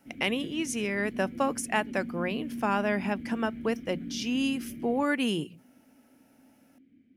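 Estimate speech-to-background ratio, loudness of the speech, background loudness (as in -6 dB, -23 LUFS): 10.0 dB, -30.0 LUFS, -40.0 LUFS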